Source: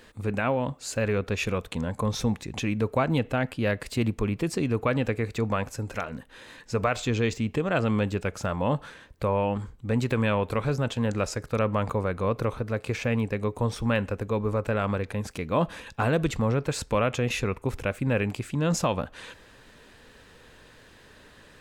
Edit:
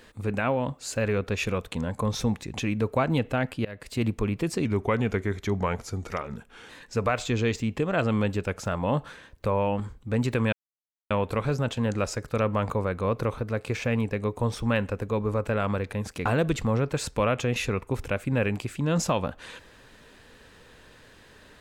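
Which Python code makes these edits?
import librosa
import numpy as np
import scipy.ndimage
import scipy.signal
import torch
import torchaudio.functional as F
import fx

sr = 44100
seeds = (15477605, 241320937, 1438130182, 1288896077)

y = fx.edit(x, sr, fx.fade_in_from(start_s=3.65, length_s=0.4, floor_db=-23.0),
    fx.speed_span(start_s=4.65, length_s=1.82, speed=0.89),
    fx.insert_silence(at_s=10.3, length_s=0.58),
    fx.cut(start_s=15.45, length_s=0.55), tone=tone)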